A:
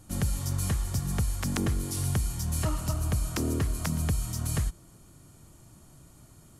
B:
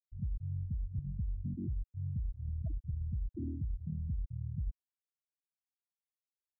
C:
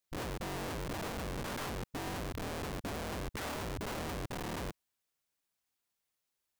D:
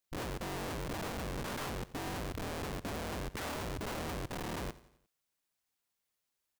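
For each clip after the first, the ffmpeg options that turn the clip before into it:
-af "afftfilt=real='re*gte(hypot(re,im),0.224)':imag='im*gte(hypot(re,im),0.224)':win_size=1024:overlap=0.75,areverse,acompressor=threshold=0.0158:ratio=4,areverse,volume=1.12"
-af "alimiter=level_in=3.76:limit=0.0631:level=0:latency=1:release=15,volume=0.266,aeval=exprs='(mod(168*val(0)+1,2)-1)/168':c=same,volume=3.35"
-af "aecho=1:1:88|176|264|352:0.119|0.0594|0.0297|0.0149"

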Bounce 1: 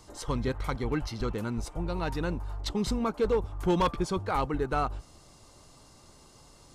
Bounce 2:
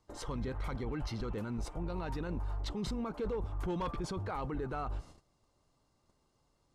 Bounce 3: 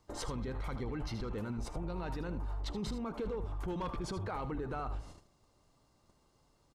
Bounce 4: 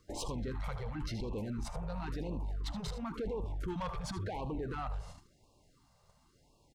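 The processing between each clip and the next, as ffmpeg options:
-af "agate=range=0.126:threshold=0.00316:ratio=16:detection=peak,highshelf=f=4200:g=-9,alimiter=level_in=2:limit=0.0631:level=0:latency=1:release=12,volume=0.501"
-af "acompressor=threshold=0.0112:ratio=6,aecho=1:1:77:0.266,volume=1.58"
-af "asoftclip=type=tanh:threshold=0.0188,afftfilt=real='re*(1-between(b*sr/1024,270*pow(1700/270,0.5+0.5*sin(2*PI*0.95*pts/sr))/1.41,270*pow(1700/270,0.5+0.5*sin(2*PI*0.95*pts/sr))*1.41))':imag='im*(1-between(b*sr/1024,270*pow(1700/270,0.5+0.5*sin(2*PI*0.95*pts/sr))/1.41,270*pow(1700/270,0.5+0.5*sin(2*PI*0.95*pts/sr))*1.41))':win_size=1024:overlap=0.75,volume=1.41"

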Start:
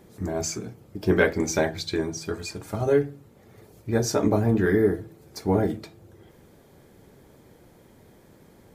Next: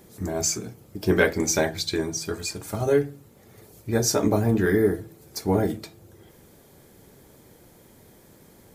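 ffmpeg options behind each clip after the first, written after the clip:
-af "highshelf=f=4800:g=10"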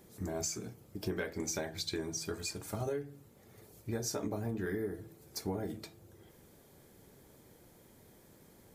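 -af "acompressor=threshold=0.0562:ratio=12,volume=0.422"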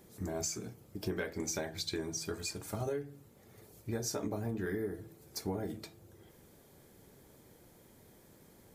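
-af anull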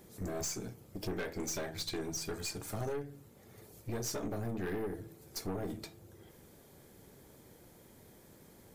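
-af "aeval=exprs='(tanh(63.1*val(0)+0.45)-tanh(0.45))/63.1':c=same,volume=1.5"

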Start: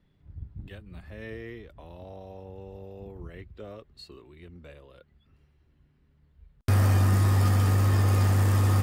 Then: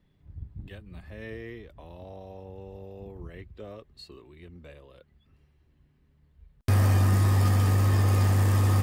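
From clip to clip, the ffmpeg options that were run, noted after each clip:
-af "bandreject=f=1400:w=15"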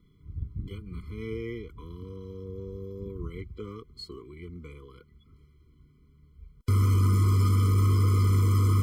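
-af "alimiter=limit=0.0841:level=0:latency=1,afftfilt=real='re*eq(mod(floor(b*sr/1024/490),2),0)':imag='im*eq(mod(floor(b*sr/1024/490),2),0)':win_size=1024:overlap=0.75,volume=1.88"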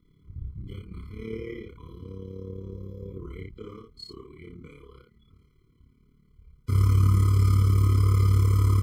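-filter_complex "[0:a]tremolo=f=36:d=0.75,asplit=2[s0][s1];[s1]aecho=0:1:32|63:0.531|0.631[s2];[s0][s2]amix=inputs=2:normalize=0"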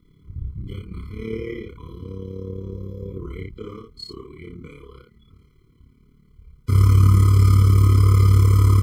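-af "aeval=exprs='0.282*(cos(1*acos(clip(val(0)/0.282,-1,1)))-cos(1*PI/2))+0.00282*(cos(3*acos(clip(val(0)/0.282,-1,1)))-cos(3*PI/2))':c=same,volume=2.11"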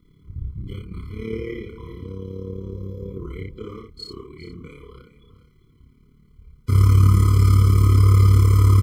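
-af "aecho=1:1:406:0.188"

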